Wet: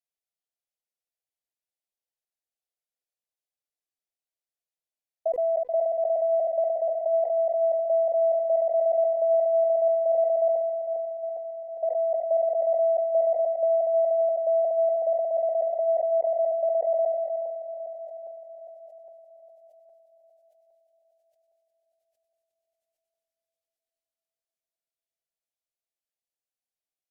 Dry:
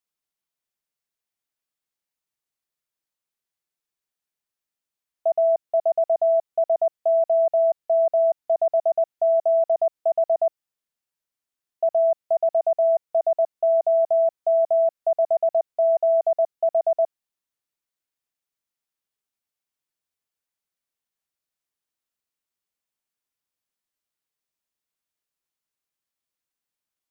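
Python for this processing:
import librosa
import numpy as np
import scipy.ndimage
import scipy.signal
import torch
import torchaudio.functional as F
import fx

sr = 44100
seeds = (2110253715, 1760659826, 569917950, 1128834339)

y = fx.reverse_delay_fb(x, sr, ms=406, feedback_pct=63, wet_db=-12.5)
y = fx.peak_eq(y, sr, hz=350.0, db=-2.5, octaves=0.77)
y = fx.fixed_phaser(y, sr, hz=450.0, stages=4)
y = fx.env_lowpass_down(y, sr, base_hz=690.0, full_db=-23.5)
y = fx.peak_eq(y, sr, hz=740.0, db=10.5, octaves=0.9)
y = fx.comb_fb(y, sr, f0_hz=500.0, decay_s=0.55, harmonics='all', damping=0.0, mix_pct=70)
y = y + 10.0 ** (-12.5 / 20.0) * np.pad(y, (int(312 * sr / 1000.0), 0))[:len(y)]
y = fx.sustainer(y, sr, db_per_s=29.0)
y = y * librosa.db_to_amplitude(1.0)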